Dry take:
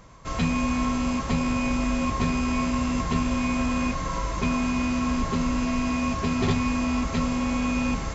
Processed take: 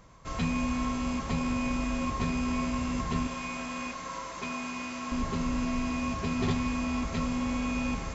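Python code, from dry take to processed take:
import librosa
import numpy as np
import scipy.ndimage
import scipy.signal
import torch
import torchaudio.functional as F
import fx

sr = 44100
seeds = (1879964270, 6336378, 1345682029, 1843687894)

y = fx.highpass(x, sr, hz=600.0, slope=6, at=(3.27, 5.12))
y = fx.echo_bbd(y, sr, ms=77, stages=2048, feedback_pct=84, wet_db=-17.5)
y = F.gain(torch.from_numpy(y), -5.5).numpy()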